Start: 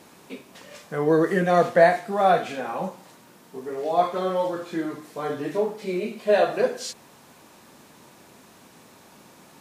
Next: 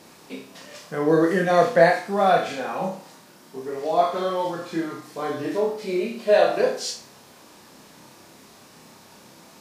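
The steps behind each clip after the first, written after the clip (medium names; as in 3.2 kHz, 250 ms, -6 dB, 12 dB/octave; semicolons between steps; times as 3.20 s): peaking EQ 5 kHz +5 dB 0.62 oct; on a send: flutter echo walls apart 5.2 m, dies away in 0.36 s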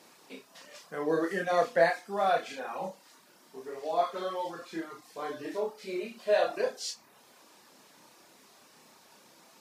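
high-pass 390 Hz 6 dB/octave; reverb removal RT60 0.51 s; trim -6.5 dB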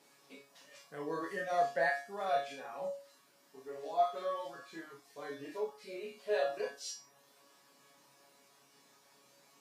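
feedback comb 140 Hz, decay 0.33 s, harmonics all, mix 90%; trim +3.5 dB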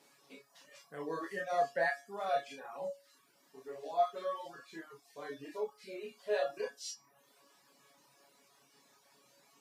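reverb removal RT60 0.65 s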